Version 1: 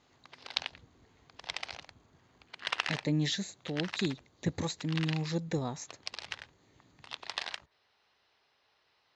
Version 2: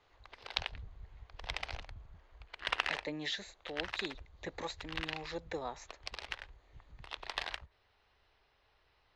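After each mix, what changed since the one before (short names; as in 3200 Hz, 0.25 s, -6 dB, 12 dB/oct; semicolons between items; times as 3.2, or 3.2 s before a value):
background: remove BPF 590–5500 Hz; master: add three-band isolator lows -22 dB, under 410 Hz, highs -14 dB, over 3900 Hz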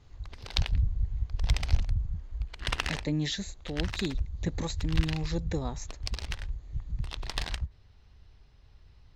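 master: remove three-band isolator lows -22 dB, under 410 Hz, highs -14 dB, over 3900 Hz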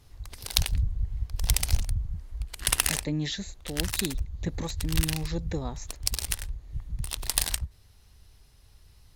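background: remove air absorption 190 m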